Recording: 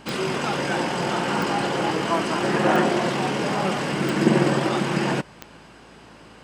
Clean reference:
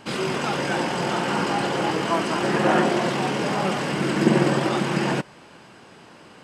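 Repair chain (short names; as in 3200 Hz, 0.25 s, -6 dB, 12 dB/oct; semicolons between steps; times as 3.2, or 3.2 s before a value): de-click; de-hum 55 Hz, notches 5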